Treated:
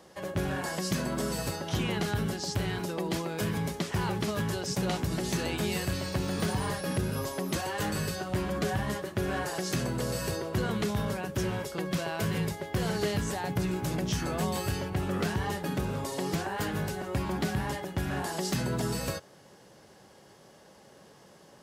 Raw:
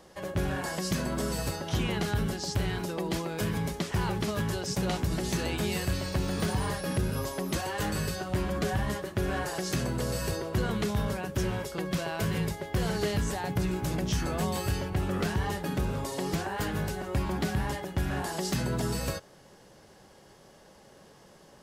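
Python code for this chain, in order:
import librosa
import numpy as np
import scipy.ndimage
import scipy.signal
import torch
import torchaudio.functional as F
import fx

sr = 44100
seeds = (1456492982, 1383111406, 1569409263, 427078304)

y = scipy.signal.sosfilt(scipy.signal.butter(2, 82.0, 'highpass', fs=sr, output='sos'), x)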